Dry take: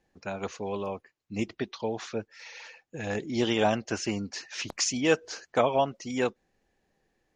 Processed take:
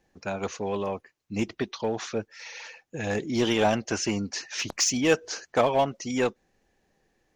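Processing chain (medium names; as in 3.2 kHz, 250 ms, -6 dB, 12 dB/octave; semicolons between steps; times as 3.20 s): peaking EQ 6 kHz +3.5 dB 0.24 oct; in parallel at -11 dB: wavefolder -26 dBFS; on the sum: trim +1.5 dB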